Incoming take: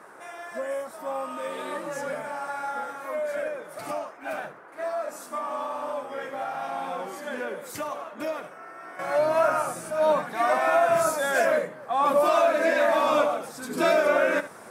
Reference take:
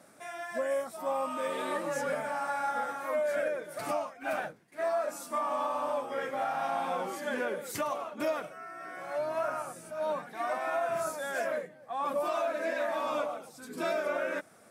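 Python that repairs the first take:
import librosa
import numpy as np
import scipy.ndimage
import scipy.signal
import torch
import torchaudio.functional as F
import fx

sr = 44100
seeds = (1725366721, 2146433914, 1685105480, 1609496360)

y = fx.noise_reduce(x, sr, print_start_s=0.0, print_end_s=0.5, reduce_db=6.0)
y = fx.fix_echo_inverse(y, sr, delay_ms=74, level_db=-15.0)
y = fx.gain(y, sr, db=fx.steps((0.0, 0.0), (8.99, -10.0)))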